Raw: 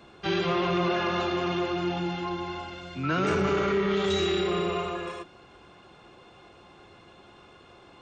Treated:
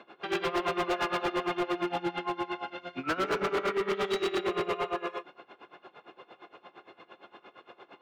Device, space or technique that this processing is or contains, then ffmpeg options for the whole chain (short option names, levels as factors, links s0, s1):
helicopter radio: -af "highpass=340,lowpass=2800,aeval=exprs='val(0)*pow(10,-20*(0.5-0.5*cos(2*PI*8.7*n/s))/20)':c=same,asoftclip=type=hard:threshold=0.0251,volume=2.24"